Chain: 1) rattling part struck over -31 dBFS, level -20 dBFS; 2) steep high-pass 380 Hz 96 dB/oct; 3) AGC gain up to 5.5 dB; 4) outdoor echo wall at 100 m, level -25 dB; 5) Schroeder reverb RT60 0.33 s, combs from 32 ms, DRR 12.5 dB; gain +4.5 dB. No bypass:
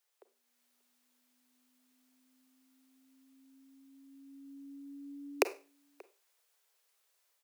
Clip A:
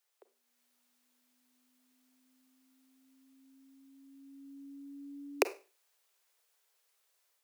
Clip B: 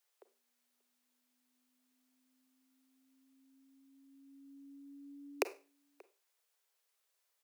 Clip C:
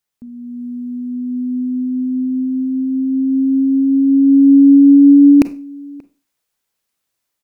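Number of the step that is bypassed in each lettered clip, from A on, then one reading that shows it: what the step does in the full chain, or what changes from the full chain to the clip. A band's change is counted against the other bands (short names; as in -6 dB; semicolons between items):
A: 4, momentary loudness spread change -1 LU; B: 3, momentary loudness spread change -1 LU; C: 2, crest factor change -27.0 dB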